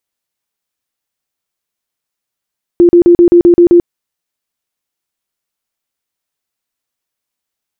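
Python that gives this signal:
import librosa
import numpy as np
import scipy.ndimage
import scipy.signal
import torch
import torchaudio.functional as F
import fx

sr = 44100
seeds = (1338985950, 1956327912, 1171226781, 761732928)

y = fx.tone_burst(sr, hz=347.0, cycles=31, every_s=0.13, bursts=8, level_db=-1.5)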